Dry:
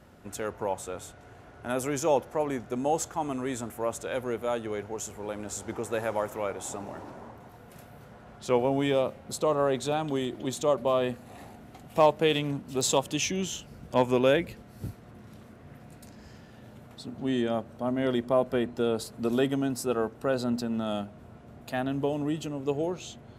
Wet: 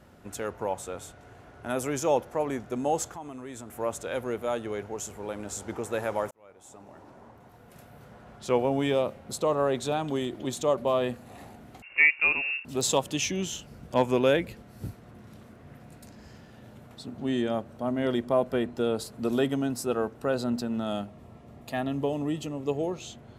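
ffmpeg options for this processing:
-filter_complex "[0:a]asettb=1/sr,asplit=3[s0][s1][s2];[s0]atrim=end=3.124[s3];[s1]atrim=start=3.12:end=3.77,asetpts=PTS-STARTPTS,afade=t=in:d=0.004:c=qsin,afade=t=out:st=0.646:d=0.004:c=qsin,acompressor=threshold=0.01:ratio=2.5:attack=3.2:release=140:knee=1:detection=peak[s4];[s2]atrim=start=3.766[s5];[s3][s4]acrossfade=d=0.004:c1=hsin:c2=qsin[s6];[s6][s5]acrossfade=d=0.004:c1=qsin:c2=hsin,asettb=1/sr,asplit=3[s7][s8][s9];[s7]atrim=end=11.824[s10];[s8]atrim=start=11.82:end=12.65,asetpts=PTS-STARTPTS,afade=t=in:d=0.004:c=qsin,afade=t=out:st=0.826:d=0.004:c=qsin,lowpass=f=2500:t=q:w=0.5098,lowpass=f=2500:t=q:w=0.6013,lowpass=f=2500:t=q:w=0.9,lowpass=f=2500:t=q:w=2.563,afreqshift=-2900[s11];[s9]atrim=start=12.646[s12];[s10][s11]acrossfade=d=0.004:c1=hsin:c2=qsin[s13];[s13][s12]acrossfade=d=0.004:c1=qsin:c2=hsin,asettb=1/sr,asplit=3[s14][s15][s16];[s14]atrim=end=21.064[s17];[s15]atrim=start=21.06:end=23.02,asetpts=PTS-STARTPTS,afade=t=in:d=0.004:c=qsin,afade=t=out:st=1.956:d=0.004:c=qsin,asuperstop=centerf=1500:order=8:qfactor=7.6[s18];[s16]atrim=start=23.016[s19];[s17][s18]acrossfade=d=0.004:c1=hsin:c2=qsin[s20];[s20][s19]acrossfade=d=0.004:c1=qsin:c2=hsin,asplit=2[s21][s22];[s21]atrim=end=6.31,asetpts=PTS-STARTPTS,afade=t=out:st=6.306:d=0.004:c=hsin[s23];[s22]atrim=start=6.31,asetpts=PTS-STARTPTS,afade=t=in:d=1.85[s24];[s23][s24]concat=n=2:v=0:a=1"

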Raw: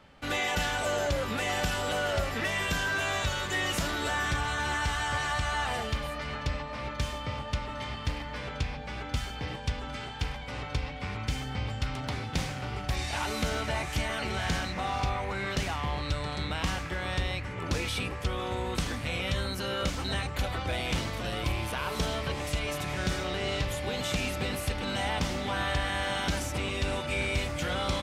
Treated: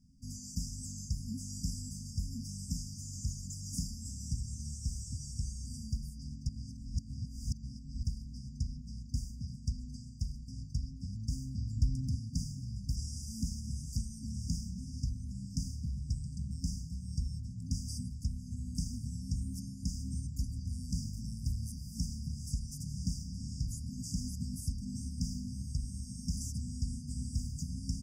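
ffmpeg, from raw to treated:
-filter_complex "[0:a]asettb=1/sr,asplit=3[s0][s1][s2];[s0]atrim=end=11.764[s3];[s1]atrim=start=11.76:end=12.16,asetpts=PTS-STARTPTS,afade=t=in:d=0.004:c=qsin,afade=t=out:st=0.396:d=0.004:c=qsin,lowshelf=f=180:g=8[s4];[s2]atrim=start=12.156[s5];[s3][s4]acrossfade=d=0.004:c1=hsin:c2=qsin[s6];[s6][s5]acrossfade=d=0.004:c1=qsin:c2=hsin,asplit=3[s7][s8][s9];[s7]atrim=end=6.492[s10];[s8]atrim=start=6.488:end=8.032,asetpts=PTS-STARTPTS,areverse[s11];[s9]atrim=start=8.028[s12];[s10][s11]acrossfade=d=0.004:c1=hsin:c2=hsin[s13];[s13][s12]acrossfade=d=0.004:c1=hsin:c2=hsin,equalizer=f=12000:t=o:w=0.23:g=-11.5,afftfilt=real='re*(1-between(b*sr/4096,270,4700))':imag='im*(1-between(b*sr/4096,270,4700))':win_size=4096:overlap=0.75,volume=0.708"

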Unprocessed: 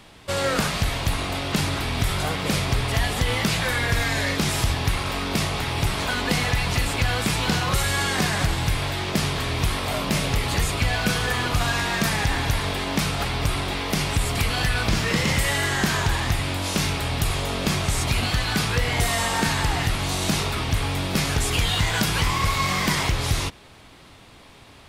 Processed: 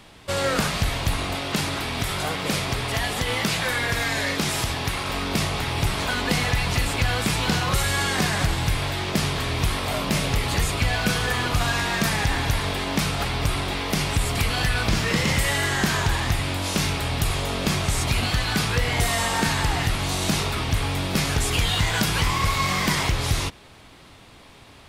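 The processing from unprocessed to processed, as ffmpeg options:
-filter_complex "[0:a]asettb=1/sr,asplit=3[s0][s1][s2];[s0]atrim=end=1.354[s3];[s1]atrim=start=1.35:end=5.09,asetpts=PTS-STARTPTS,afade=t=in:d=0.004:c=qsin,afade=t=out:st=3.736:d=0.004:c=qsin,lowshelf=f=110:g=-9.5[s4];[s2]atrim=start=5.086[s5];[s3][s4]acrossfade=d=0.004:c1=hsin:c2=qsin[s6];[s6][s5]acrossfade=d=0.004:c1=qsin:c2=hsin"

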